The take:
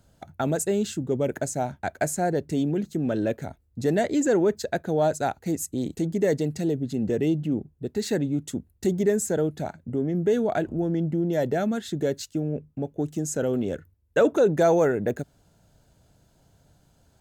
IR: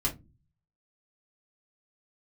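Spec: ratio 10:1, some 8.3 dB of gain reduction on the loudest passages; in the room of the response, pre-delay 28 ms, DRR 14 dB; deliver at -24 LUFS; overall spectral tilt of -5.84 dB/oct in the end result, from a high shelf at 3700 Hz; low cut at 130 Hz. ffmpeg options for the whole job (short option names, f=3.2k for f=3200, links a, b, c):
-filter_complex "[0:a]highpass=130,highshelf=f=3.7k:g=-6.5,acompressor=threshold=-24dB:ratio=10,asplit=2[a][b];[1:a]atrim=start_sample=2205,adelay=28[c];[b][c]afir=irnorm=-1:irlink=0,volume=-20dB[d];[a][d]amix=inputs=2:normalize=0,volume=6.5dB"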